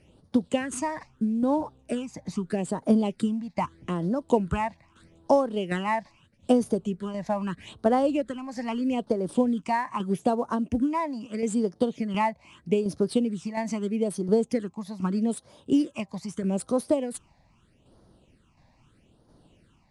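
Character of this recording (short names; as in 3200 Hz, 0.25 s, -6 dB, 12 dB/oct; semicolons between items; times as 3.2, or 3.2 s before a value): phasing stages 8, 0.79 Hz, lowest notch 390–2600 Hz; tremolo saw down 1.4 Hz, depth 50%; IMA ADPCM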